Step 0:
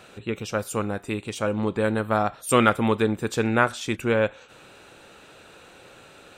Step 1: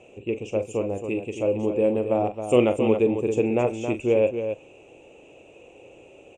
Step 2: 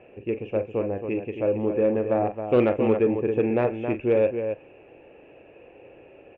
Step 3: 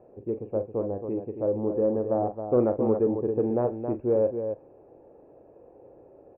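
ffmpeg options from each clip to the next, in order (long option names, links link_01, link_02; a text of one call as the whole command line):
ffmpeg -i in.wav -filter_complex "[0:a]firequalizer=gain_entry='entry(120,0);entry(180,-4);entry(320,6);entry(530,6);entry(980,-6);entry(1500,-24);entry(2600,4);entry(4100,-25);entry(6700,-2);entry(12000,-29)':delay=0.05:min_phase=1,asplit=2[link_01][link_02];[link_02]aecho=0:1:40.82|271.1:0.316|0.398[link_03];[link_01][link_03]amix=inputs=2:normalize=0,volume=-3dB" out.wav
ffmpeg -i in.wav -af "lowpass=frequency=2400:width=0.5412,lowpass=frequency=2400:width=1.3066,equalizer=frequency=1700:width=4.2:gain=14,asoftclip=type=tanh:threshold=-9dB" out.wav
ffmpeg -i in.wav -af "lowpass=frequency=1100:width=0.5412,lowpass=frequency=1100:width=1.3066,volume=-2.5dB" out.wav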